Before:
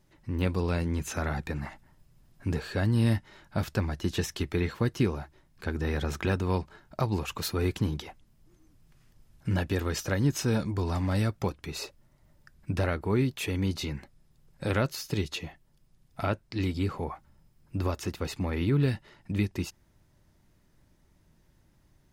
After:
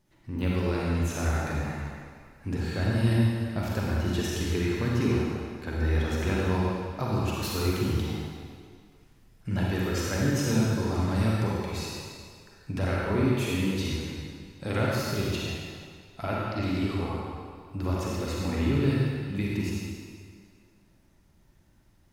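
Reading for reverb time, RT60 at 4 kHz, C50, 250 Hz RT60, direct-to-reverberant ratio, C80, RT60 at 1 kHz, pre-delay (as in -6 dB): 2.1 s, 1.9 s, -3.5 dB, 1.9 s, -5.0 dB, -1.5 dB, 2.1 s, 36 ms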